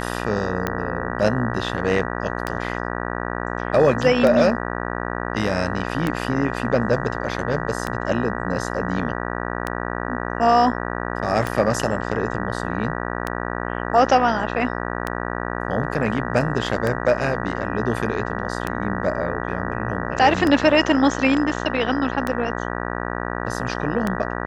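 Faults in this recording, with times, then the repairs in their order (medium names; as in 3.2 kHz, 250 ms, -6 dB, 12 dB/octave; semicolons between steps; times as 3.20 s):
buzz 60 Hz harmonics 32 -27 dBFS
tick 33 1/3 rpm -9 dBFS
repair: de-click; de-hum 60 Hz, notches 32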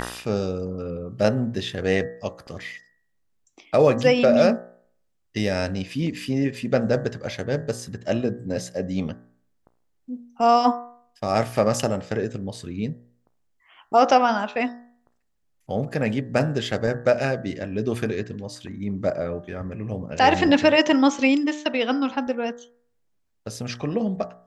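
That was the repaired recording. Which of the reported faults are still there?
nothing left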